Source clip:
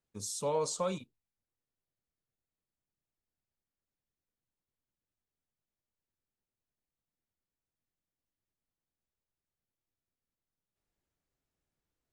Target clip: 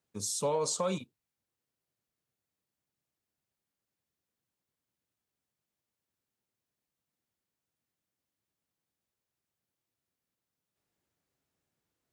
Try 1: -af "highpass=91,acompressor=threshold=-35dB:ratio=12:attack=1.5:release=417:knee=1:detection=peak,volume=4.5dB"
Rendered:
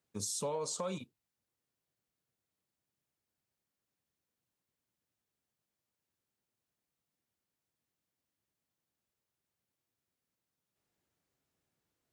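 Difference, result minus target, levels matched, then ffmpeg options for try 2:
downward compressor: peak gain reduction +6.5 dB
-af "highpass=91,acompressor=threshold=-28dB:ratio=12:attack=1.5:release=417:knee=1:detection=peak,volume=4.5dB"

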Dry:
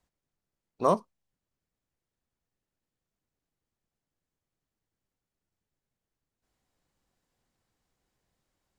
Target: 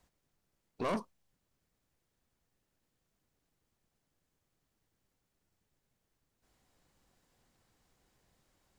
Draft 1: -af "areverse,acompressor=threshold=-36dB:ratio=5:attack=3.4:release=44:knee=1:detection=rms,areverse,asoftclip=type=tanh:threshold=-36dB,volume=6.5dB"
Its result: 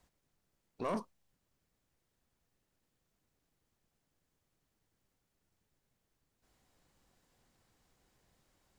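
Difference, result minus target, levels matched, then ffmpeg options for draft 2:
downward compressor: peak gain reduction +6 dB
-af "areverse,acompressor=threshold=-28.5dB:ratio=5:attack=3.4:release=44:knee=1:detection=rms,areverse,asoftclip=type=tanh:threshold=-36dB,volume=6.5dB"

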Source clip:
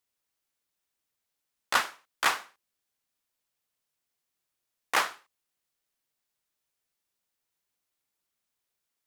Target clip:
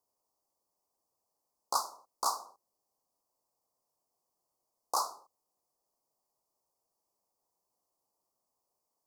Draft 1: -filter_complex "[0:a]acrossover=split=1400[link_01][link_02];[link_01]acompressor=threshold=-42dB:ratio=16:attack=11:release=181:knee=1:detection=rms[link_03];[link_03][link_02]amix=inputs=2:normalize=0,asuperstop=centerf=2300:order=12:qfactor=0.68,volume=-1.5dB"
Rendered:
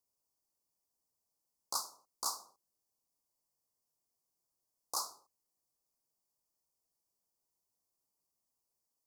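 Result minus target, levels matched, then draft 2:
1,000 Hz band −6.0 dB
-filter_complex "[0:a]acrossover=split=1400[link_01][link_02];[link_01]acompressor=threshold=-42dB:ratio=16:attack=11:release=181:knee=1:detection=rms[link_03];[link_03][link_02]amix=inputs=2:normalize=0,asuperstop=centerf=2300:order=12:qfactor=0.68,equalizer=frequency=770:width_type=o:width=2.5:gain=11.5,volume=-1.5dB"

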